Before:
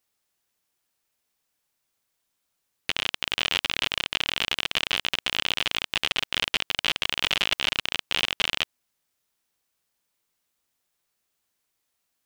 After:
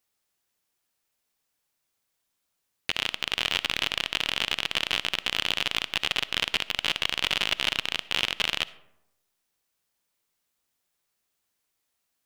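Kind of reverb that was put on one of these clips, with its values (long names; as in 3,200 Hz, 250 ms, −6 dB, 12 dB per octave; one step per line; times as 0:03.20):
comb and all-pass reverb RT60 0.9 s, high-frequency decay 0.45×, pre-delay 20 ms, DRR 17.5 dB
level −1 dB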